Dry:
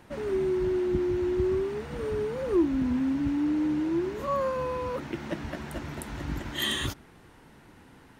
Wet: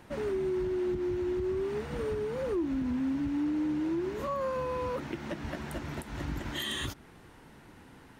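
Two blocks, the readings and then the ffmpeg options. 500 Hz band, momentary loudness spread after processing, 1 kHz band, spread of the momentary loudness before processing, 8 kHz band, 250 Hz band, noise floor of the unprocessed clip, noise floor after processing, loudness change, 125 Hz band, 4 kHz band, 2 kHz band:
-3.5 dB, 8 LU, -3.5 dB, 9 LU, -4.5 dB, -4.0 dB, -54 dBFS, -54 dBFS, -4.0 dB, -3.5 dB, -5.0 dB, -3.5 dB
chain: -af "alimiter=level_in=1dB:limit=-24dB:level=0:latency=1:release=183,volume=-1dB"

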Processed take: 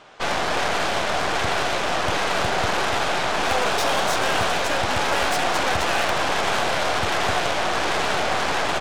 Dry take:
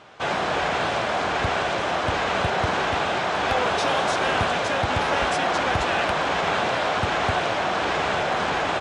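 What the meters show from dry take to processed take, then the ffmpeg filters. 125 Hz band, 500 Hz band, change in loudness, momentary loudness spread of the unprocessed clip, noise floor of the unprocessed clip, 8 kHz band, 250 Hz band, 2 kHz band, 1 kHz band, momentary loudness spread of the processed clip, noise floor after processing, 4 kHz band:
-2.0 dB, 0.0 dB, +1.0 dB, 2 LU, -25 dBFS, +7.5 dB, -0.5 dB, +1.0 dB, +0.5 dB, 2 LU, -24 dBFS, +3.5 dB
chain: -af "bass=f=250:g=-4,treble=f=4k:g=3,aeval=exprs='0.282*(cos(1*acos(clip(val(0)/0.282,-1,1)))-cos(1*PI/2))+0.0447*(cos(8*acos(clip(val(0)/0.282,-1,1)))-cos(8*PI/2))':c=same"

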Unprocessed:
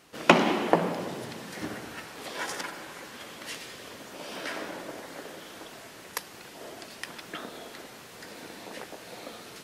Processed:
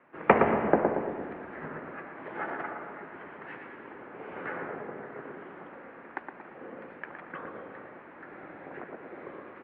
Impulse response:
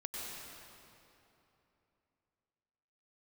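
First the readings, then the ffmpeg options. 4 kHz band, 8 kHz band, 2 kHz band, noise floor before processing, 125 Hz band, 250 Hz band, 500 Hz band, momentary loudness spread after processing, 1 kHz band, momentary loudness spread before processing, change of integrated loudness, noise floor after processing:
-21.0 dB, under -40 dB, -2.5 dB, -48 dBFS, -2.5 dB, -2.0 dB, +1.0 dB, 21 LU, 0.0 dB, 18 LU, -0.5 dB, -49 dBFS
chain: -filter_complex "[0:a]highpass=f=390:t=q:w=0.5412,highpass=f=390:t=q:w=1.307,lowpass=f=2.2k:t=q:w=0.5176,lowpass=f=2.2k:t=q:w=0.7071,lowpass=f=2.2k:t=q:w=1.932,afreqshift=-150,asplit=2[a][b];[b]adelay=115,lowpass=f=1.2k:p=1,volume=-3.5dB,asplit=2[c][d];[d]adelay=115,lowpass=f=1.2k:p=1,volume=0.54,asplit=2[e][f];[f]adelay=115,lowpass=f=1.2k:p=1,volume=0.54,asplit=2[g][h];[h]adelay=115,lowpass=f=1.2k:p=1,volume=0.54,asplit=2[i][j];[j]adelay=115,lowpass=f=1.2k:p=1,volume=0.54,asplit=2[k][l];[l]adelay=115,lowpass=f=1.2k:p=1,volume=0.54,asplit=2[m][n];[n]adelay=115,lowpass=f=1.2k:p=1,volume=0.54[o];[a][c][e][g][i][k][m][o]amix=inputs=8:normalize=0"

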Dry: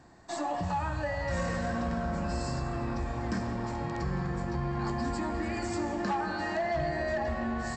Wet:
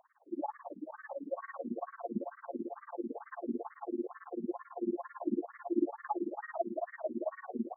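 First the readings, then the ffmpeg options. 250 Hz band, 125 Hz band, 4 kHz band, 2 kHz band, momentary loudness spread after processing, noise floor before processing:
-4.0 dB, under -20 dB, under -40 dB, -14.0 dB, 7 LU, -36 dBFS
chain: -af "tremolo=f=18:d=0.99,tiltshelf=f=830:g=9,afftfilt=real='re*between(b*sr/1024,290*pow(1600/290,0.5+0.5*sin(2*PI*2.2*pts/sr))/1.41,290*pow(1600/290,0.5+0.5*sin(2*PI*2.2*pts/sr))*1.41)':imag='im*between(b*sr/1024,290*pow(1600/290,0.5+0.5*sin(2*PI*2.2*pts/sr))/1.41,290*pow(1600/290,0.5+0.5*sin(2*PI*2.2*pts/sr))*1.41)':win_size=1024:overlap=0.75,volume=1.5dB"

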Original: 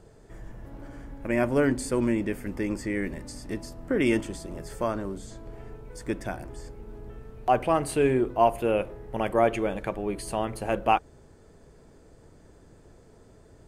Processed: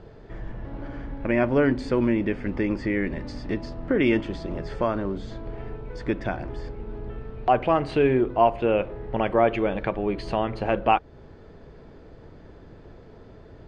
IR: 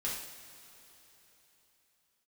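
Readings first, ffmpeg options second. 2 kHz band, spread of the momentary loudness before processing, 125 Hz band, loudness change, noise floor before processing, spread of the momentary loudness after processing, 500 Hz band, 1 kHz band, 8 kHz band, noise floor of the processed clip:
+3.0 dB, 21 LU, +4.0 dB, +2.5 dB, -54 dBFS, 16 LU, +3.0 dB, +2.5 dB, under -15 dB, -47 dBFS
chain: -filter_complex "[0:a]lowpass=f=4.2k:w=0.5412,lowpass=f=4.2k:w=1.3066,asplit=2[a][b];[b]acompressor=threshold=-32dB:ratio=6,volume=2dB[c];[a][c]amix=inputs=2:normalize=0"

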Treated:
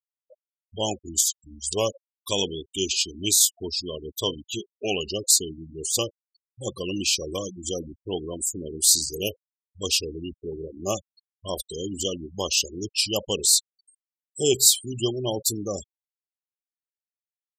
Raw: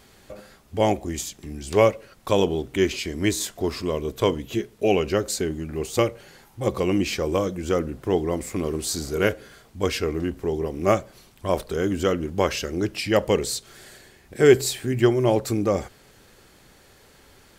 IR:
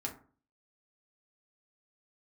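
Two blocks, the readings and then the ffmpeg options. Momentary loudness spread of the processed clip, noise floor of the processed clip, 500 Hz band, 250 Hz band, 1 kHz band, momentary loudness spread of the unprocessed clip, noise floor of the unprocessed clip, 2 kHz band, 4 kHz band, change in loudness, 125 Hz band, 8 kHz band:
16 LU, under -85 dBFS, -8.0 dB, -8.0 dB, -9.5 dB, 9 LU, -54 dBFS, -7.0 dB, +7.5 dB, -0.5 dB, -8.5 dB, +11.0 dB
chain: -af "asuperstop=centerf=1700:order=12:qfactor=1.4,aexciter=amount=8.8:drive=1.8:freq=2.6k,afftfilt=real='re*gte(hypot(re,im),0.112)':imag='im*gte(hypot(re,im),0.112)':win_size=1024:overlap=0.75,volume=-8dB"

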